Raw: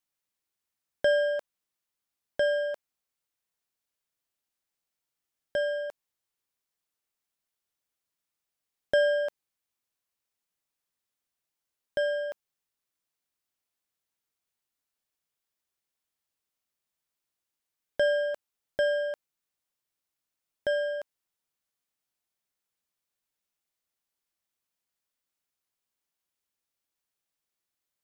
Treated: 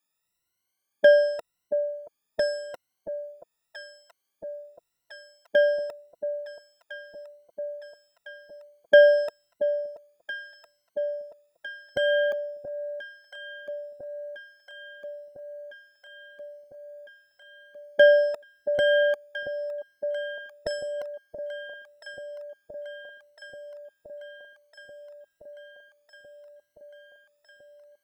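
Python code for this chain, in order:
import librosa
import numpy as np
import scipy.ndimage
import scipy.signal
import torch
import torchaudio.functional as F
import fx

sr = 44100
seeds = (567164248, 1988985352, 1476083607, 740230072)

y = fx.spec_ripple(x, sr, per_octave=2.0, drift_hz=0.88, depth_db=24)
y = fx.echo_alternate(y, sr, ms=678, hz=850.0, feedback_pct=82, wet_db=-10.0)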